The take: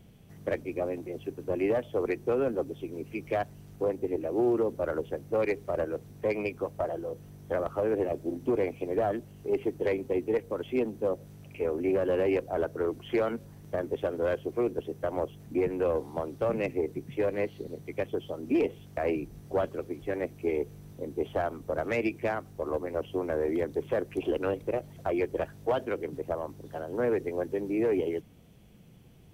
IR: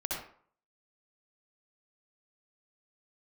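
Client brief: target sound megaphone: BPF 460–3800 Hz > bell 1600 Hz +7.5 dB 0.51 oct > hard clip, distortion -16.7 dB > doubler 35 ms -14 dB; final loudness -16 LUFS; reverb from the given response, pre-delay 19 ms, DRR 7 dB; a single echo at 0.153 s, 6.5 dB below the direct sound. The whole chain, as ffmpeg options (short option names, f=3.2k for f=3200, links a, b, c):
-filter_complex "[0:a]aecho=1:1:153:0.473,asplit=2[a][b];[1:a]atrim=start_sample=2205,adelay=19[c];[b][c]afir=irnorm=-1:irlink=0,volume=-11.5dB[d];[a][d]amix=inputs=2:normalize=0,highpass=460,lowpass=3.8k,equalizer=f=1.6k:t=o:w=0.51:g=7.5,asoftclip=type=hard:threshold=-24.5dB,asplit=2[e][f];[f]adelay=35,volume=-14dB[g];[e][g]amix=inputs=2:normalize=0,volume=16.5dB"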